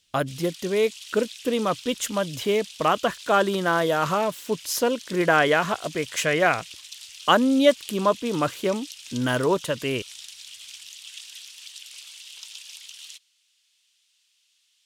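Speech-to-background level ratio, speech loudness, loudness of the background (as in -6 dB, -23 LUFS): 16.0 dB, -24.0 LUFS, -40.0 LUFS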